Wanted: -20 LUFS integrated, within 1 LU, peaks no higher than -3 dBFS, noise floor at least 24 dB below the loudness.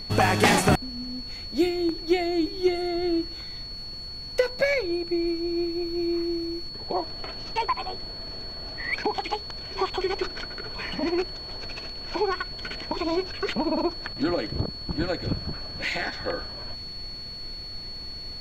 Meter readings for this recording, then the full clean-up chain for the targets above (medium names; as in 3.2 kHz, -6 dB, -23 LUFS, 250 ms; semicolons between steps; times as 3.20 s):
steady tone 4.4 kHz; tone level -36 dBFS; noise floor -38 dBFS; noise floor target -52 dBFS; loudness -28.0 LUFS; peak level -7.5 dBFS; loudness target -20.0 LUFS
-> band-stop 4.4 kHz, Q 30; noise print and reduce 14 dB; trim +8 dB; peak limiter -3 dBFS